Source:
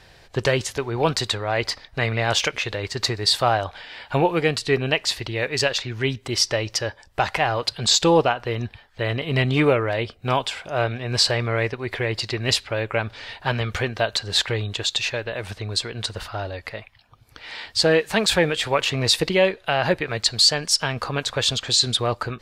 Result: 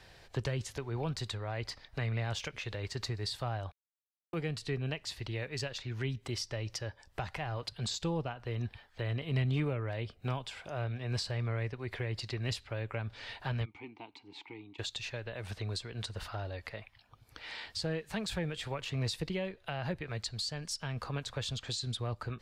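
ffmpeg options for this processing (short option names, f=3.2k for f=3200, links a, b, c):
-filter_complex "[0:a]asplit=3[a][b][c];[a]afade=t=out:st=13.64:d=0.02[d];[b]asplit=3[e][f][g];[e]bandpass=f=300:t=q:w=8,volume=0dB[h];[f]bandpass=f=870:t=q:w=8,volume=-6dB[i];[g]bandpass=f=2.24k:t=q:w=8,volume=-9dB[j];[h][i][j]amix=inputs=3:normalize=0,afade=t=in:st=13.64:d=0.02,afade=t=out:st=14.78:d=0.02[k];[c]afade=t=in:st=14.78:d=0.02[l];[d][k][l]amix=inputs=3:normalize=0,asplit=3[m][n][o];[m]atrim=end=3.72,asetpts=PTS-STARTPTS,afade=t=out:st=3.716:d=0.004:c=hsin[p];[n]atrim=start=3.72:end=4.33,asetpts=PTS-STARTPTS,volume=0[q];[o]atrim=start=4.33,asetpts=PTS-STARTPTS,afade=t=in:d=0.004:c=hsin[r];[p][q][r]concat=n=3:v=0:a=1,acrossover=split=190[s][t];[t]acompressor=threshold=-34dB:ratio=3[u];[s][u]amix=inputs=2:normalize=0,volume=-6.5dB"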